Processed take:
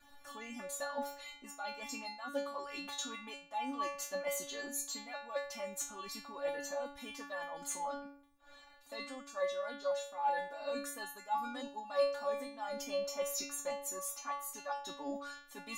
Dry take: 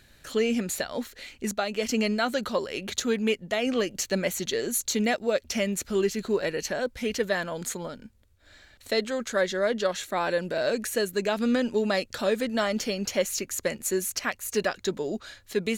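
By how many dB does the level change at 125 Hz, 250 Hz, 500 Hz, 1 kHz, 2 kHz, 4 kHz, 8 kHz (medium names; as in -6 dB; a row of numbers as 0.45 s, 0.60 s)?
under -25 dB, -19.0 dB, -12.5 dB, -4.5 dB, -13.5 dB, -12.5 dB, -9.5 dB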